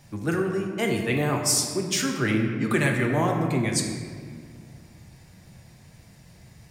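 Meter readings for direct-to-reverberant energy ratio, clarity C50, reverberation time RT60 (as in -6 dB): 1.0 dB, 4.0 dB, 1.9 s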